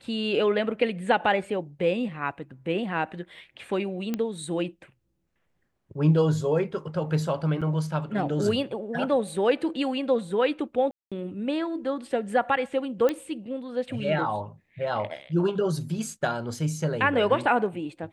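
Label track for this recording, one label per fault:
4.140000	4.140000	pop -15 dBFS
7.610000	7.620000	dropout 6.4 ms
10.910000	11.120000	dropout 206 ms
13.090000	13.090000	pop -14 dBFS

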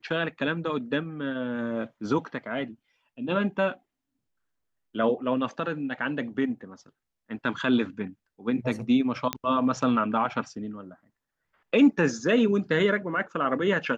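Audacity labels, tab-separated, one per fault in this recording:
9.330000	9.330000	pop -10 dBFS

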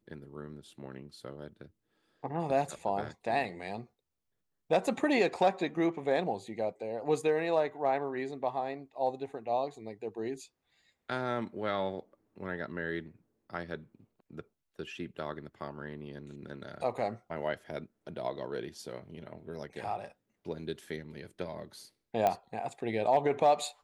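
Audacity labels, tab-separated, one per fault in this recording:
22.270000	22.270000	pop -15 dBFS

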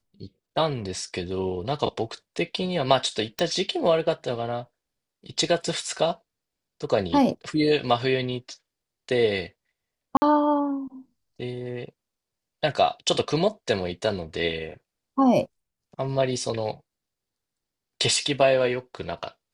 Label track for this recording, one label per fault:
3.390000	3.390000	pop -12 dBFS
10.170000	10.220000	dropout 50 ms

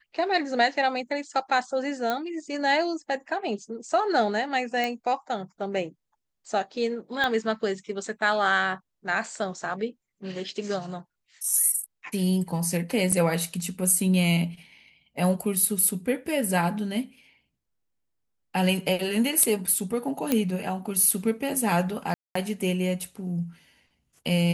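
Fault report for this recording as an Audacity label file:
2.100000	2.100000	pop -13 dBFS
4.840000	4.840000	pop -14 dBFS
7.240000	7.240000	pop -13 dBFS
13.120000	13.120000	dropout 3.9 ms
20.320000	20.320000	pop -8 dBFS
22.140000	22.350000	dropout 214 ms

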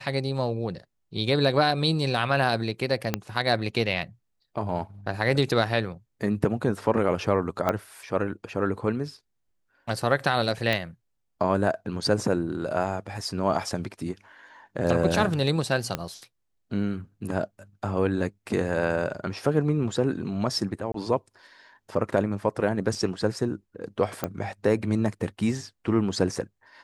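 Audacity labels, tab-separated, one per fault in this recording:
3.140000	3.140000	pop -9 dBFS
7.690000	7.690000	pop -11 dBFS
10.730000	10.730000	pop -12 dBFS
15.950000	15.950000	pop -12 dBFS
20.920000	20.940000	dropout 23 ms
24.240000	24.240000	pop -13 dBFS

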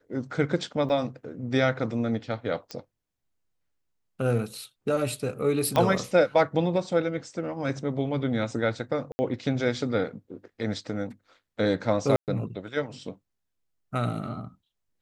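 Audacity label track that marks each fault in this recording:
0.890000	0.900000	dropout 6.1 ms
2.710000	2.710000	pop -21 dBFS
5.760000	5.760000	pop -11 dBFS
9.120000	9.190000	dropout 70 ms
12.160000	12.280000	dropout 118 ms

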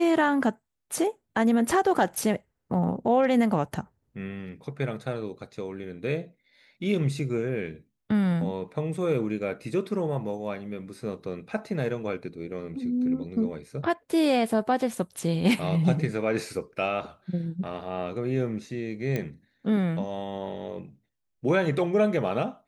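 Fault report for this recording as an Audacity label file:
19.160000	19.160000	pop -16 dBFS

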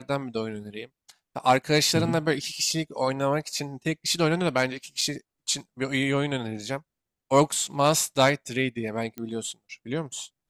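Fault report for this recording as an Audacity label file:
5.010000	5.010000	dropout 4.2 ms
9.180000	9.180000	pop -22 dBFS

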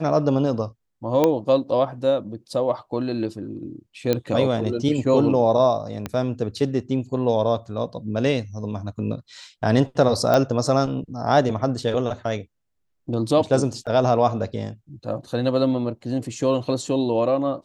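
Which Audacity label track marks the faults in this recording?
1.240000	1.240000	pop -6 dBFS
4.130000	4.130000	pop -8 dBFS
6.060000	6.060000	pop -13 dBFS
10.340000	10.340000	pop -7 dBFS
13.860000	13.870000	dropout 7.5 ms

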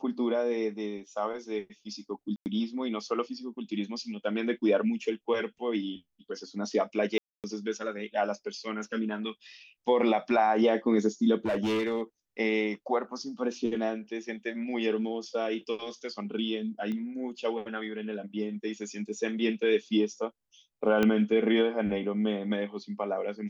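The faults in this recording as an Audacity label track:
2.360000	2.460000	dropout 99 ms
7.180000	7.440000	dropout 258 ms
11.460000	12.020000	clipped -25 dBFS
16.920000	16.920000	pop -25 dBFS
21.030000	21.030000	pop -13 dBFS

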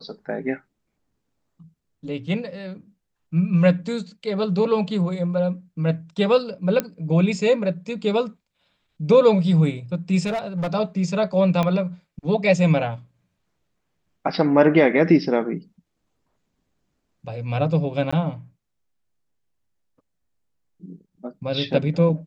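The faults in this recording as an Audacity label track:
6.800000	6.800000	pop -8 dBFS
10.260000	10.750000	clipped -21.5 dBFS
11.630000	11.630000	pop -11 dBFS
18.110000	18.120000	dropout 15 ms

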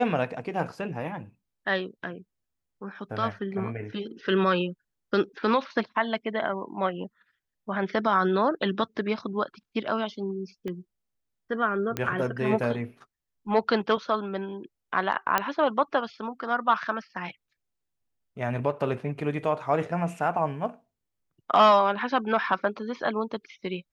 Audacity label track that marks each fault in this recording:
10.680000	10.680000	pop -23 dBFS
11.970000	11.970000	pop -13 dBFS
15.380000	15.380000	pop -8 dBFS

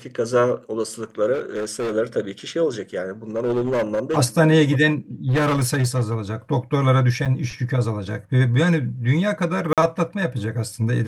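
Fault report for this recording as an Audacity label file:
1.330000	1.940000	clipped -21.5 dBFS
3.370000	4.180000	clipped -17.5 dBFS
5.280000	6.170000	clipped -15.5 dBFS
7.250000	7.260000	dropout 7.4 ms
9.730000	9.780000	dropout 47 ms

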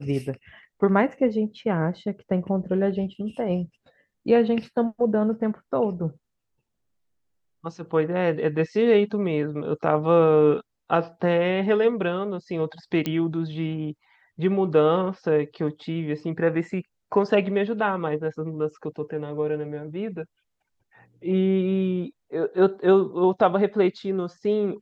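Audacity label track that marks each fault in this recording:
13.060000	13.060000	pop -13 dBFS

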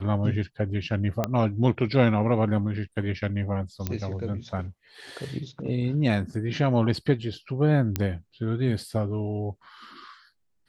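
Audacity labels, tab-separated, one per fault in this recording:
1.240000	1.240000	pop -11 dBFS
3.870000	3.870000	pop -13 dBFS
7.960000	7.960000	pop -10 dBFS

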